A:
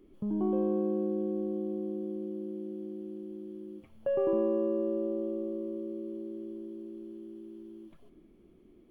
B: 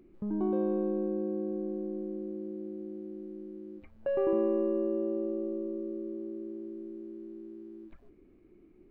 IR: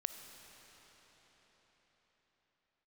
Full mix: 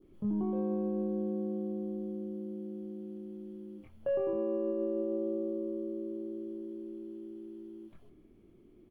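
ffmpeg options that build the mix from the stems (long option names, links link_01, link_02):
-filter_complex "[0:a]adynamicequalizer=threshold=0.00158:dfrequency=2200:dqfactor=1.1:tfrequency=2200:tqfactor=1.1:attack=5:release=100:ratio=0.375:range=2:mode=cutabove:tftype=bell,volume=-2.5dB[link_01];[1:a]equalizer=frequency=110:width=1.6:gain=14,adelay=24,volume=-8dB[link_02];[link_01][link_02]amix=inputs=2:normalize=0,alimiter=level_in=1dB:limit=-24dB:level=0:latency=1:release=101,volume=-1dB"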